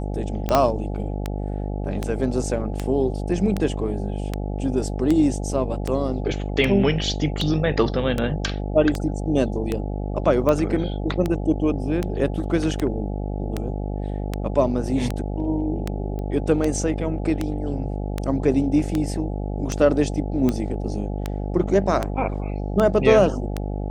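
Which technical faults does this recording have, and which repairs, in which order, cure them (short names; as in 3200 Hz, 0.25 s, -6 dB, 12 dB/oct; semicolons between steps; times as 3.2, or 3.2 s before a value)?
buzz 50 Hz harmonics 17 -27 dBFS
tick 78 rpm -10 dBFS
0.55 pop -4 dBFS
16.19 pop -21 dBFS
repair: de-click; de-hum 50 Hz, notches 17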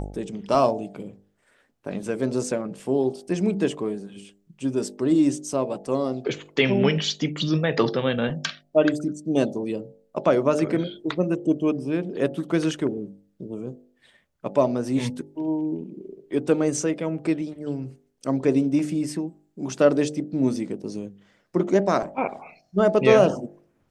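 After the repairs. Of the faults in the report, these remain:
0.55 pop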